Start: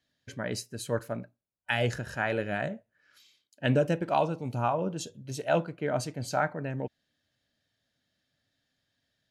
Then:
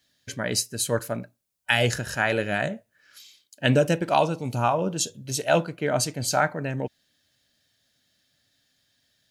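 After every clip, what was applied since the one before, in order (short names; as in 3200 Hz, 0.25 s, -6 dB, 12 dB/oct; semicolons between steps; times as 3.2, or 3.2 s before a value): high shelf 3400 Hz +11.5 dB; gain +4.5 dB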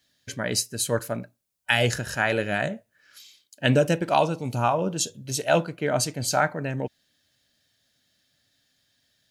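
nothing audible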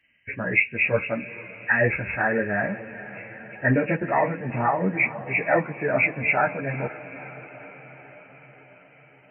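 nonlinear frequency compression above 1600 Hz 4:1; diffused feedback echo 0.468 s, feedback 64%, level -15.5 dB; ensemble effect; gain +3.5 dB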